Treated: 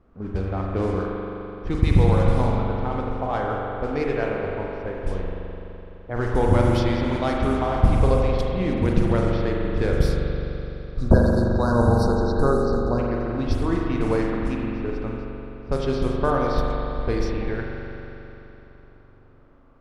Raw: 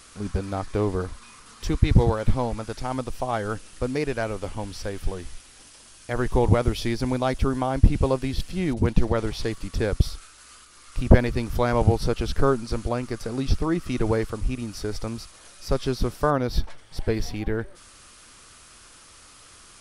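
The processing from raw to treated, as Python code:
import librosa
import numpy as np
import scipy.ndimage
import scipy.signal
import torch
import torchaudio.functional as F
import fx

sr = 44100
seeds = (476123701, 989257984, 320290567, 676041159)

y = fx.spec_erase(x, sr, start_s=10.62, length_s=2.37, low_hz=1700.0, high_hz=3700.0)
y = fx.env_lowpass(y, sr, base_hz=540.0, full_db=-17.0)
y = fx.rev_spring(y, sr, rt60_s=3.4, pass_ms=(42,), chirp_ms=45, drr_db=-2.0)
y = y * 10.0 ** (-1.5 / 20.0)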